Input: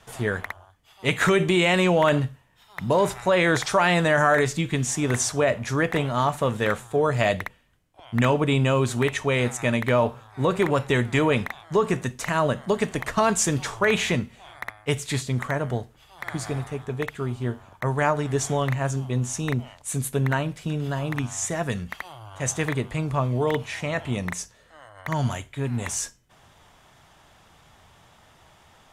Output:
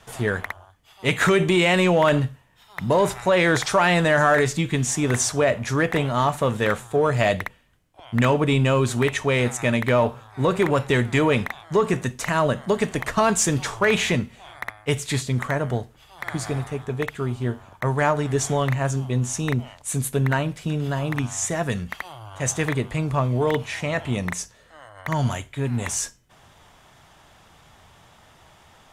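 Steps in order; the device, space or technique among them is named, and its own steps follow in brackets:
parallel distortion (in parallel at −10 dB: hard clipping −20 dBFS, distortion −10 dB)

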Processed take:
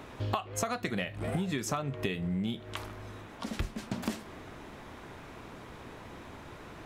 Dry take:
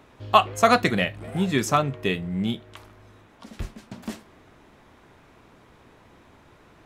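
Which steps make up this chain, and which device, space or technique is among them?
serial compression, leveller first (downward compressor 2.5 to 1, threshold −25 dBFS, peak gain reduction 10 dB; downward compressor 8 to 1, threshold −36 dBFS, peak gain reduction 17 dB)
level +6.5 dB

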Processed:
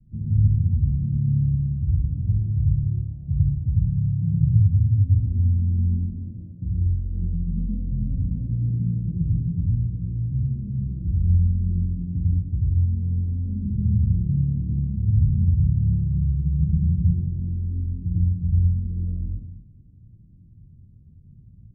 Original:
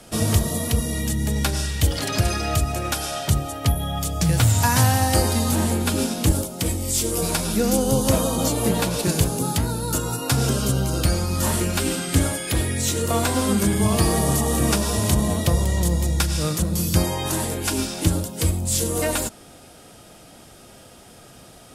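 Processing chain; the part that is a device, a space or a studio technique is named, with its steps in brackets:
0:06.05–0:06.62: meter weighting curve A
club heard from the street (brickwall limiter −13.5 dBFS, peak gain reduction 9.5 dB; low-pass filter 160 Hz 24 dB per octave; convolution reverb RT60 0.70 s, pre-delay 84 ms, DRR −3.5 dB)

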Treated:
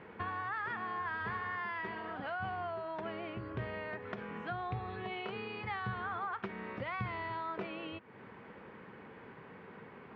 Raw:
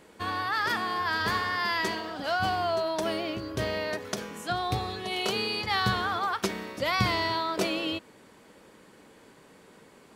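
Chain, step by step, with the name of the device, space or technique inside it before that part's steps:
bass amplifier (downward compressor 4 to 1, threshold −42 dBFS, peak gain reduction 18 dB; loudspeaker in its box 65–2,400 Hz, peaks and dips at 120 Hz +4 dB, 300 Hz −7 dB, 590 Hz −6 dB)
level +4.5 dB

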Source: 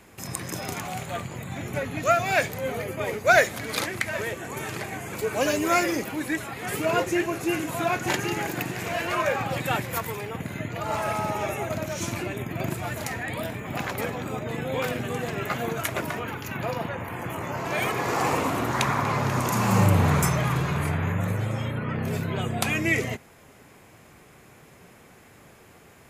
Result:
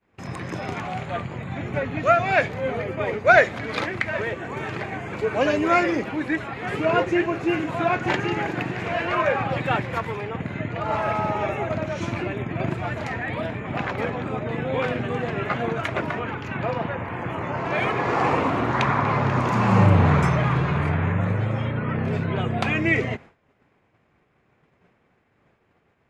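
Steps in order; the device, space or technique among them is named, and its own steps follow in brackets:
hearing-loss simulation (low-pass filter 2,800 Hz 12 dB per octave; downward expander −41 dBFS)
level +3.5 dB

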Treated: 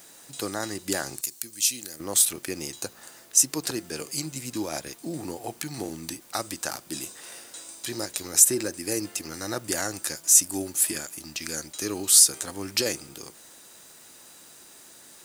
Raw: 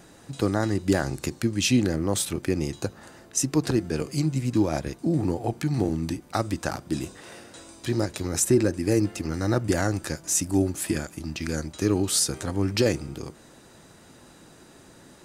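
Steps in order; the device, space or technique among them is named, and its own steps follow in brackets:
turntable without a phono preamp (RIAA equalisation recording; white noise bed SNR 29 dB)
0:01.21–0:02.00: first-order pre-emphasis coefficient 0.8
level −3.5 dB

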